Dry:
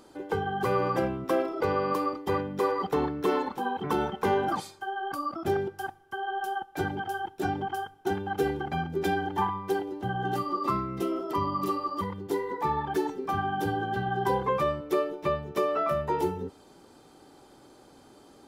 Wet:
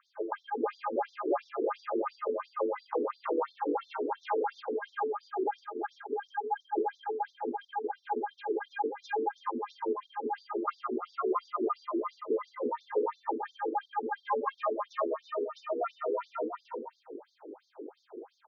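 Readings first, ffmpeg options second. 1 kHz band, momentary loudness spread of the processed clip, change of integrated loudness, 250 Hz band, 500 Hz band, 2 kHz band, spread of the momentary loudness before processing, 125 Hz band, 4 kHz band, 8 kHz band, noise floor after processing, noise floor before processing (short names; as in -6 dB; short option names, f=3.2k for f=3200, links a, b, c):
-4.5 dB, 6 LU, -5.0 dB, -6.0 dB, -3.5 dB, -8.0 dB, 6 LU, under -35 dB, -10.5 dB, under -15 dB, -71 dBFS, -55 dBFS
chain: -filter_complex "[0:a]lowshelf=f=430:g=10.5,acrossover=split=800|1100[a][b][c];[a]acompressor=threshold=-34dB:ratio=12[d];[d][b][c]amix=inputs=3:normalize=0,tiltshelf=f=1.2k:g=8,afreqshift=47,aecho=1:1:69|95|165|447|498|642:0.119|0.168|0.266|0.473|0.355|0.266,afftfilt=real='re*between(b*sr/1024,340*pow(4900/340,0.5+0.5*sin(2*PI*2.9*pts/sr))/1.41,340*pow(4900/340,0.5+0.5*sin(2*PI*2.9*pts/sr))*1.41)':imag='im*between(b*sr/1024,340*pow(4900/340,0.5+0.5*sin(2*PI*2.9*pts/sr))/1.41,340*pow(4900/340,0.5+0.5*sin(2*PI*2.9*pts/sr))*1.41)':win_size=1024:overlap=0.75"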